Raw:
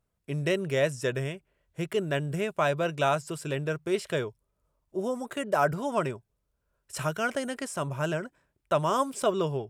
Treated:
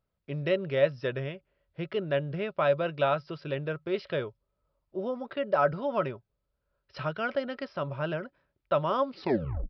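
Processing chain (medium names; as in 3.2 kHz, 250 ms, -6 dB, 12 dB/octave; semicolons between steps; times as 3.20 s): tape stop on the ending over 0.62 s; small resonant body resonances 560/1300 Hz, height 9 dB, ringing for 90 ms; resampled via 11.025 kHz; trim -3 dB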